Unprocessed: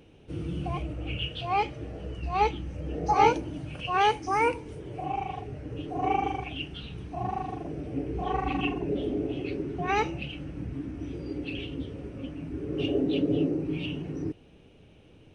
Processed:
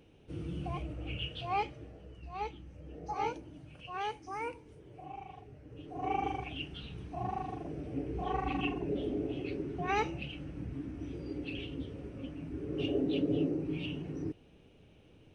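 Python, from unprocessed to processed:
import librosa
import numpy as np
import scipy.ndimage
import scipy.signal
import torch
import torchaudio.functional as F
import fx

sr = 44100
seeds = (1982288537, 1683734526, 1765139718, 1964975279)

y = fx.gain(x, sr, db=fx.line((1.57, -6.0), (2.04, -14.0), (5.66, -14.0), (6.26, -5.0)))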